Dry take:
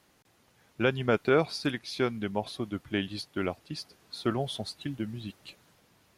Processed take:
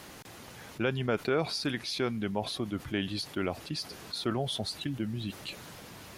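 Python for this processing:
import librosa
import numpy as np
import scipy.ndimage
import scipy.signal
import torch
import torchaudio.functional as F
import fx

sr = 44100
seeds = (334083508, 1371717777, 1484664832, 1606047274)

y = fx.env_flatten(x, sr, amount_pct=50)
y = y * 10.0 ** (-5.5 / 20.0)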